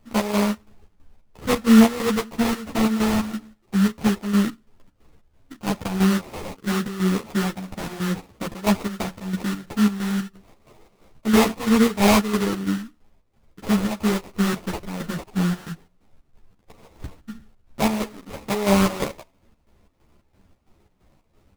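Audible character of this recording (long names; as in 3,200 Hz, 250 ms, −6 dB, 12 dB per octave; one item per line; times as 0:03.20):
chopped level 3 Hz, depth 65%, duty 60%
aliases and images of a low sample rate 1,600 Hz, jitter 20%
a shimmering, thickened sound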